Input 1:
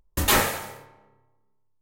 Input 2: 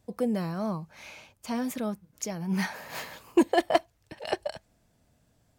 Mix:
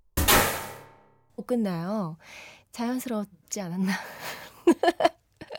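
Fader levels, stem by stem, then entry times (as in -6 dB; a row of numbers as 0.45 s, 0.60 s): +0.5 dB, +1.5 dB; 0.00 s, 1.30 s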